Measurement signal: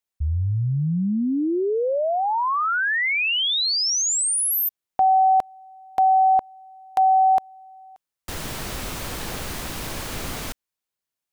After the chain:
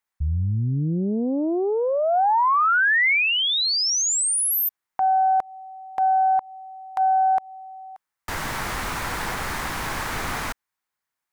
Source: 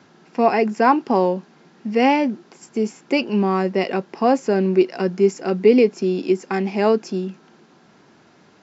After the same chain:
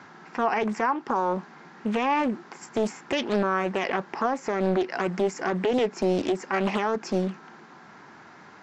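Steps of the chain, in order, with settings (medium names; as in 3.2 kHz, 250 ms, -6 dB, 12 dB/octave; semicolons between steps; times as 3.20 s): high-order bell 1.3 kHz +8.5 dB; compression 12:1, threshold -16 dBFS; peak limiter -15.5 dBFS; loudspeaker Doppler distortion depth 0.67 ms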